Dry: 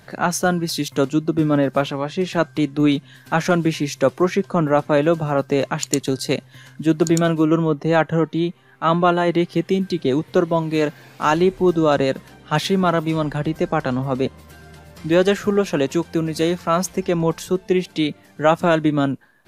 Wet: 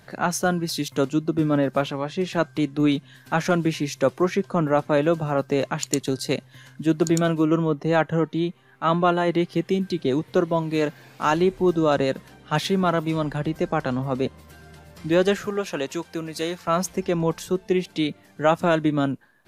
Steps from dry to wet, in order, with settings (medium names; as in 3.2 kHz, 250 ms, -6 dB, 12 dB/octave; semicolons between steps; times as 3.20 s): 15.46–16.68 s: bass shelf 410 Hz -9.5 dB; trim -3.5 dB